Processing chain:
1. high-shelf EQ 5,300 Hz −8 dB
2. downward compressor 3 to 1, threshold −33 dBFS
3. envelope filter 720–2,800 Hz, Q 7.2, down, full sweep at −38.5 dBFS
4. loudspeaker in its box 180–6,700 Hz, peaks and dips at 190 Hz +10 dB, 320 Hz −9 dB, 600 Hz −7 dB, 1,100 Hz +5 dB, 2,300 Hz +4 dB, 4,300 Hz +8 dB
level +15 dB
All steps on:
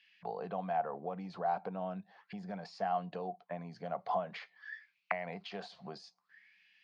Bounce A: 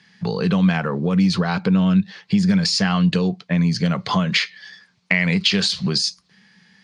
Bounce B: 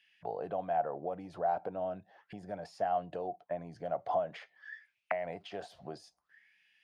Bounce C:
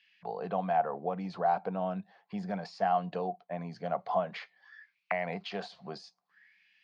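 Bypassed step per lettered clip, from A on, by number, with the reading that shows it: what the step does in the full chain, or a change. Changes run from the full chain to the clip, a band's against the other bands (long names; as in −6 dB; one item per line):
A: 3, 1 kHz band −21.0 dB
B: 4, change in momentary loudness spread +3 LU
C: 2, average gain reduction 4.5 dB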